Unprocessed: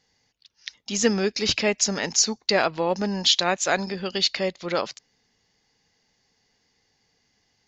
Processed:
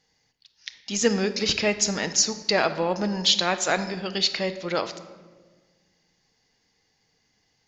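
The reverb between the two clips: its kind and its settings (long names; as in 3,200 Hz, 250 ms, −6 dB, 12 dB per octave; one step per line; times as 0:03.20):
rectangular room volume 1,200 cubic metres, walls mixed, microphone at 0.57 metres
level −1 dB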